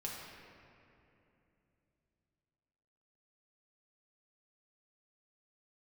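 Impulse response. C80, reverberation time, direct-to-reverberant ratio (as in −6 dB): 1.5 dB, 2.9 s, −4.5 dB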